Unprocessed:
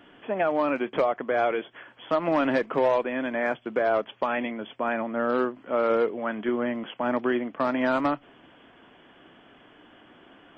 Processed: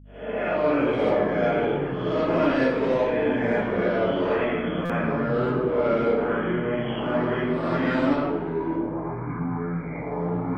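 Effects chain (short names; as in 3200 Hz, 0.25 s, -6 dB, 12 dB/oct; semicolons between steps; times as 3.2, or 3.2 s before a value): spectral swells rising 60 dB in 0.63 s; gate -45 dBFS, range -35 dB; bell 800 Hz -4 dB 0.32 oct; echoes that change speed 0.152 s, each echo -6 st, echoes 2, each echo -6 dB; dynamic EQ 1100 Hz, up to -6 dB, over -36 dBFS, Q 0.77; reverb RT60 1.1 s, pre-delay 52 ms, DRR -10 dB; hum 50 Hz, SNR 23 dB; stuck buffer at 4.85, samples 256, times 7; gain -8 dB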